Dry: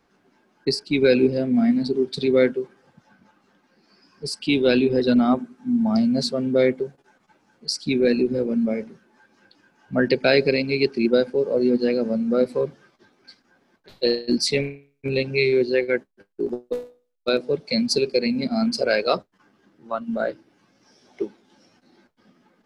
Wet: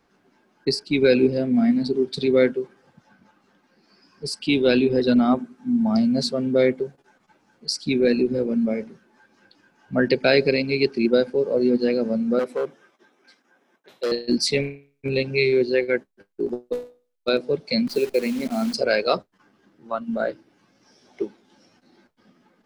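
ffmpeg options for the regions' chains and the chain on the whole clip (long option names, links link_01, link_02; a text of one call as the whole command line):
ffmpeg -i in.wav -filter_complex "[0:a]asettb=1/sr,asplit=3[link_01][link_02][link_03];[link_01]atrim=end=12.394[link_04];[link_02]atrim=start=12.39:end=14.12,asetpts=PTS-STARTPTS,afade=type=in:duration=0.004:curve=qsin,afade=type=out:start_time=1.726:duration=0.004:curve=qsin,equalizer=frequency=4500:width_type=o:width=0.22:gain=-13.5,asoftclip=type=hard:threshold=-19dB,highpass=280[link_05];[link_03]atrim=start=14.116[link_06];[link_04][link_05]acrossfade=duration=0.004:curve1=hsin:curve2=qsin[link_07];[link_07][link_06]acrossfade=duration=0.004:curve1=qsin:curve2=hsin,asettb=1/sr,asplit=3[link_08][link_09][link_10];[link_08]atrim=end=17.874[link_11];[link_09]atrim=start=17.87:end=18.74,asetpts=PTS-STARTPTS,afade=type=in:duration=0.004:curve=qsin,afade=type=out:start_time=0.866:duration=0.004:curve=qsin,acrossover=split=180 3300:gain=0.0891 1 0.0631[link_12][link_13][link_14];[link_12][link_13][link_14]amix=inputs=3:normalize=0,acrusher=bits=7:dc=4:mix=0:aa=0.000001[link_15];[link_10]atrim=start=18.736[link_16];[link_11][link_15]acrossfade=duration=0.004:curve1=hsin:curve2=qsin[link_17];[link_17][link_16]acrossfade=duration=0.004:curve1=qsin:curve2=hsin" out.wav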